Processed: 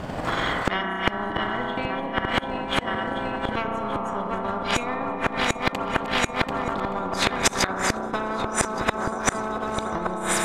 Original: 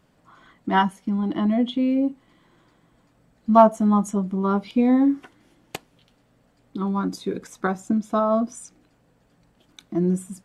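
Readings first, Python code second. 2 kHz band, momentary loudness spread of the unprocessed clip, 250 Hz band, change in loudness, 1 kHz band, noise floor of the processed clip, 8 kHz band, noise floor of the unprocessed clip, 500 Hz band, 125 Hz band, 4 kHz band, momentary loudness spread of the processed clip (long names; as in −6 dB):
+11.0 dB, 18 LU, −8.5 dB, −3.5 dB, +0.5 dB, −33 dBFS, +13.0 dB, −63 dBFS, −2.0 dB, −2.5 dB, +12.0 dB, 5 LU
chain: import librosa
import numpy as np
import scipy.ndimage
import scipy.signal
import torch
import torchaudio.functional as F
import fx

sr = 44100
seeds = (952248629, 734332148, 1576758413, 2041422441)

y = fx.reverse_delay_fb(x, sr, ms=369, feedback_pct=78, wet_db=-11.5)
y = fx.recorder_agc(y, sr, target_db=-9.5, rise_db_per_s=11.0, max_gain_db=30)
y = fx.lowpass(y, sr, hz=2900.0, slope=6)
y = fx.peak_eq(y, sr, hz=730.0, db=6.5, octaves=0.69)
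y = fx.hpss(y, sr, part='percussive', gain_db=-10)
y = fx.peak_eq(y, sr, hz=76.0, db=5.5, octaves=0.77)
y = fx.transient(y, sr, attack_db=11, sustain_db=-3)
y = fx.rev_spring(y, sr, rt60_s=2.6, pass_ms=(32,), chirp_ms=70, drr_db=6.0)
y = fx.gate_flip(y, sr, shuts_db=-11.0, range_db=-27)
y = y + 10.0 ** (-18.5 / 20.0) * np.pad(y, (int(1173 * sr / 1000.0), 0))[:len(y)]
y = fx.spectral_comp(y, sr, ratio=10.0)
y = y * librosa.db_to_amplitude(6.0)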